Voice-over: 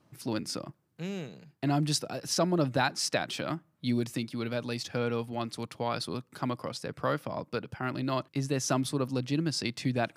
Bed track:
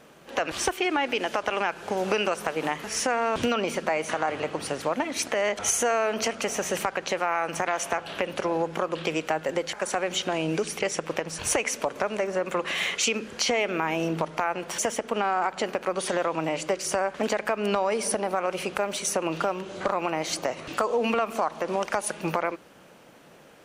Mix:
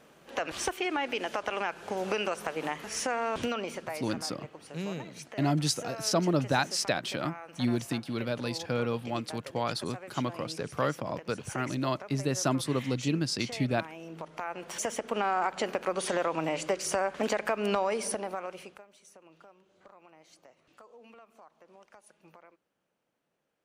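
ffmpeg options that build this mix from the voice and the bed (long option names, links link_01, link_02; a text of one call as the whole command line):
ffmpeg -i stem1.wav -i stem2.wav -filter_complex "[0:a]adelay=3750,volume=0.5dB[link_01];[1:a]volume=9dB,afade=type=out:start_time=3.33:duration=0.87:silence=0.251189,afade=type=in:start_time=14.05:duration=1.23:silence=0.188365,afade=type=out:start_time=17.78:duration=1.06:silence=0.0501187[link_02];[link_01][link_02]amix=inputs=2:normalize=0" out.wav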